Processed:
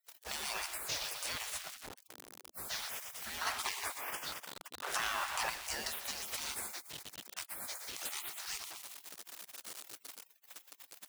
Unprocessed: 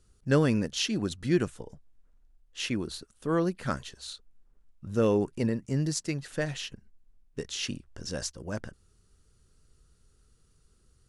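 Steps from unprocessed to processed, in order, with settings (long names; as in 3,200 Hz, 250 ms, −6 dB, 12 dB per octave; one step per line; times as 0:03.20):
gain on one half-wave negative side −7 dB
downward compressor 2 to 1, threshold −49 dBFS, peak gain reduction 15 dB
high-shelf EQ 2,600 Hz +7 dB
bucket-brigade delay 121 ms, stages 4,096, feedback 51%, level −11.5 dB
brickwall limiter −33 dBFS, peak gain reduction 10.5 dB
bit reduction 10 bits
gate on every frequency bin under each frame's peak −25 dB weak
0:03.41–0:05.50: parametric band 1,100 Hz +10.5 dB 2.3 octaves
level +18 dB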